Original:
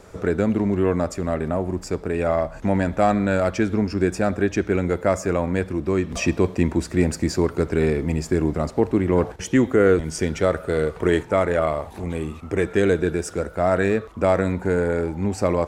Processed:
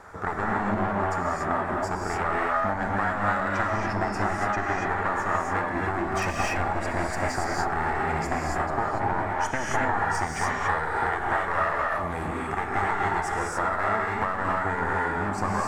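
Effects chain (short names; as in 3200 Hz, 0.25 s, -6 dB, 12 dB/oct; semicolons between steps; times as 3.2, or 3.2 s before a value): one-sided fold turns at -21 dBFS; band shelf 1200 Hz +13.5 dB; compressor, threshold -19 dBFS, peak gain reduction 13 dB; non-linear reverb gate 0.31 s rising, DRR -3.5 dB; gain -7 dB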